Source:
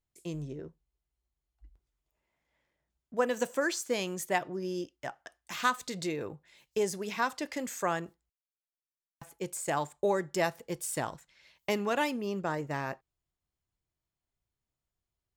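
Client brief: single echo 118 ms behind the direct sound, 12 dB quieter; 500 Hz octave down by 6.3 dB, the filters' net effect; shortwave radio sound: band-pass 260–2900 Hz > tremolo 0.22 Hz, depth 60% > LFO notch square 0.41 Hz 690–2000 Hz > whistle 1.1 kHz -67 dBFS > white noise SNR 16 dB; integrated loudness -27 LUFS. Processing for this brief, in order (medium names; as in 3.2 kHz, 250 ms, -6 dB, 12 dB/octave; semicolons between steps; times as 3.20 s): band-pass 260–2900 Hz; peaking EQ 500 Hz -7.5 dB; delay 118 ms -12 dB; tremolo 0.22 Hz, depth 60%; LFO notch square 0.41 Hz 690–2000 Hz; whistle 1.1 kHz -67 dBFS; white noise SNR 16 dB; trim +16.5 dB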